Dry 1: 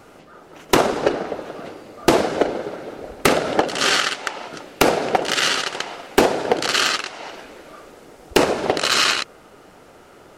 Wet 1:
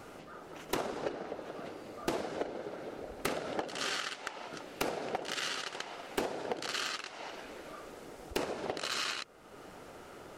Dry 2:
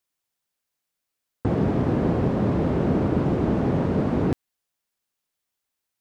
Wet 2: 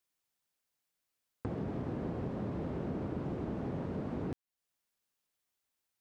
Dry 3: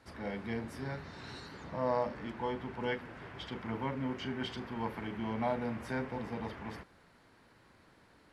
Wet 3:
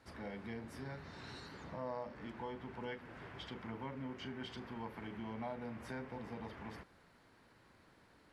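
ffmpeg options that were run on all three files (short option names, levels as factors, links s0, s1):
-af "acompressor=threshold=0.00794:ratio=2,volume=0.708"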